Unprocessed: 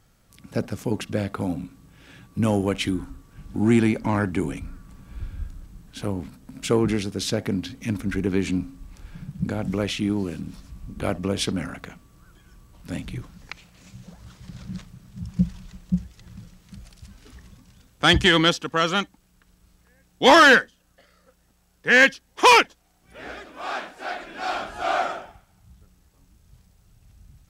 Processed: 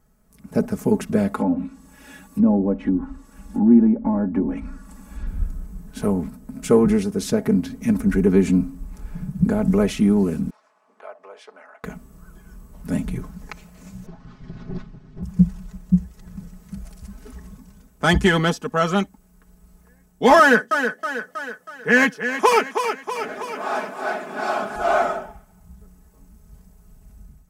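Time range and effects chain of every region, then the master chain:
1.34–5.27 treble ducked by the level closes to 490 Hz, closed at -19.5 dBFS + tilt +2 dB/oct + comb 3.6 ms, depth 64%
10.5–11.84 HPF 640 Hz 24 dB/oct + tape spacing loss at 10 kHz 25 dB + compressor 1.5:1, threshold -60 dBFS
14.06–15.23 minimum comb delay 7.4 ms + LPF 4600 Hz 24 dB/oct + bell 430 Hz -5 dB 1.3 oct
20.39–24.76 HPF 110 Hz 24 dB/oct + thinning echo 0.32 s, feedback 47%, high-pass 190 Hz, level -7 dB
whole clip: bell 3500 Hz -13.5 dB 1.8 oct; comb 4.7 ms, depth 70%; AGC gain up to 8.5 dB; gain -2 dB

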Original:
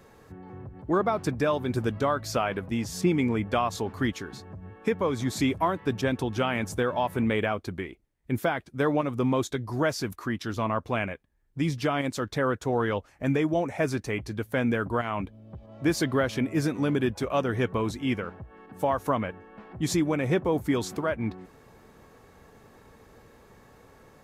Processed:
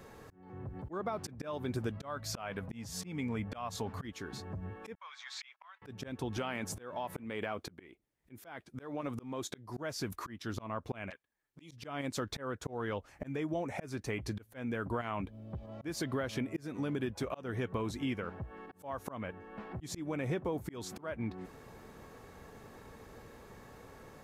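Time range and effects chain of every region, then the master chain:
1.96–4.05 bell 350 Hz -10.5 dB 0.31 oct + mismatched tape noise reduction decoder only
4.95–5.82 Bessel high-pass 1700 Hz, order 6 + gate -51 dBFS, range -16 dB + air absorption 180 m
6.37–9.77 HPF 160 Hz 6 dB/oct + compressor 2.5:1, threshold -27 dBFS
11.1–11.71 HPF 840 Hz 6 dB/oct + envelope flanger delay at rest 10 ms, full sweep at -36.5 dBFS
whole clip: auto swell 0.472 s; compressor 5:1, threshold -34 dBFS; gain +1 dB

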